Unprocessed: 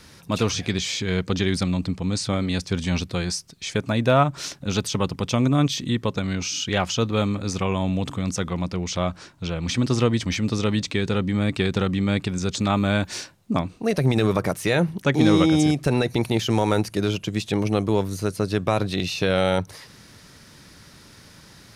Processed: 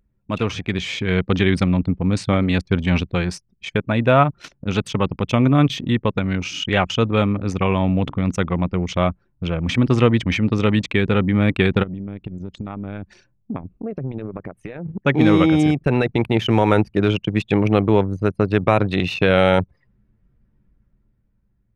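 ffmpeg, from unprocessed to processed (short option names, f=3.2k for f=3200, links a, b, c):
-filter_complex "[0:a]asplit=3[a][b][c];[a]afade=t=out:st=11.82:d=0.02[d];[b]acompressor=threshold=-30dB:ratio=5:attack=3.2:release=140:knee=1:detection=peak,afade=t=in:st=11.82:d=0.02,afade=t=out:st=14.85:d=0.02[e];[c]afade=t=in:st=14.85:d=0.02[f];[d][e][f]amix=inputs=3:normalize=0,anlmdn=63.1,highshelf=f=3.6k:t=q:w=1.5:g=-9.5,dynaudnorm=f=110:g=17:m=7dB"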